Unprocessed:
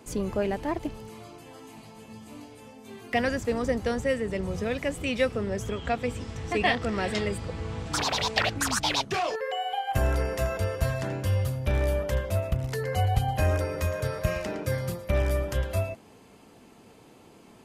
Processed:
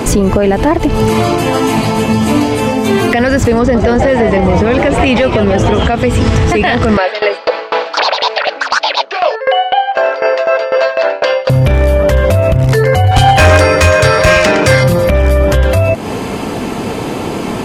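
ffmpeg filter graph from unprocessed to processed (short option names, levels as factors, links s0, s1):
-filter_complex "[0:a]asettb=1/sr,asplit=3[s0][s1][s2];[s0]atrim=end=3.594[s3];[s1]atrim=start=3.59:end=5.83,asetpts=PTS-STARTPTS,afade=t=in:d=0.004:c=qsin,afade=t=out:st=2.236:d=0.004:c=qsin,aeval=exprs='clip(val(0),-1,0.119)':c=same,adynamicsmooth=sensitivity=1.5:basefreq=7000,asplit=9[s4][s5][s6][s7][s8][s9][s10][s11][s12];[s5]adelay=156,afreqshift=130,volume=0.335[s13];[s6]adelay=312,afreqshift=260,volume=0.211[s14];[s7]adelay=468,afreqshift=390,volume=0.133[s15];[s8]adelay=624,afreqshift=520,volume=0.0841[s16];[s9]adelay=780,afreqshift=650,volume=0.0525[s17];[s10]adelay=936,afreqshift=780,volume=0.0331[s18];[s11]adelay=1092,afreqshift=910,volume=0.0209[s19];[s12]adelay=1248,afreqshift=1040,volume=0.0132[s20];[s4][s13][s14][s15][s16][s17][s18][s19][s20]amix=inputs=9:normalize=0,atrim=end_sample=98784[s21];[s2]atrim=start=5.826[s22];[s3][s21]acrossfade=d=0.004:c1=hsin:c2=qsin[s23];[s23][s22]acrossfade=d=0.004:c1=qsin:c2=hsin,asettb=1/sr,asplit=3[s24][s25][s26];[s24]atrim=end=6.974[s27];[s25]atrim=start=6.97:end=11.5,asetpts=PTS-STARTPTS,afade=t=in:d=0.004:c=qsin,afade=t=out:st=4.526:d=0.004:c=qsin,highpass=f=470:w=0.5412,highpass=f=470:w=1.3066,equalizer=f=580:t=q:w=4:g=8,equalizer=f=900:t=q:w=4:g=3,equalizer=f=1500:t=q:w=4:g=4,equalizer=f=2600:t=q:w=4:g=3,equalizer=f=4500:t=q:w=4:g=6,lowpass=f=4900:w=0.5412,lowpass=f=4900:w=1.3066,aeval=exprs='val(0)*pow(10,-28*if(lt(mod(4*n/s,1),2*abs(4)/1000),1-mod(4*n/s,1)/(2*abs(4)/1000),(mod(4*n/s,1)-2*abs(4)/1000)/(1-2*abs(4)/1000))/20)':c=same[s28];[s26]atrim=start=11.496[s29];[s27][s28]acrossfade=d=0.004:c1=hsin:c2=qsin[s30];[s30][s29]acrossfade=d=0.004:c1=qsin:c2=hsin,asettb=1/sr,asplit=3[s31][s32][s33];[s31]atrim=end=13.114[s34];[s32]atrim=start=13.11:end=14.84,asetpts=PTS-STARTPTS,afade=t=in:d=0.004:c=qsin,afade=t=out:st=1.726:d=0.004:c=qsin,lowpass=f=9400:w=0.5412,lowpass=f=9400:w=1.3066,tiltshelf=f=850:g=-6,volume=22.4,asoftclip=hard,volume=0.0447[s35];[s33]atrim=start=14.836[s36];[s34][s35]acrossfade=d=0.004:c1=hsin:c2=qsin[s37];[s37][s36]acrossfade=d=0.004:c1=qsin:c2=hsin,highshelf=f=4600:g=-7,acompressor=threshold=0.0141:ratio=6,alimiter=level_in=63.1:limit=0.891:release=50:level=0:latency=1,volume=0.891"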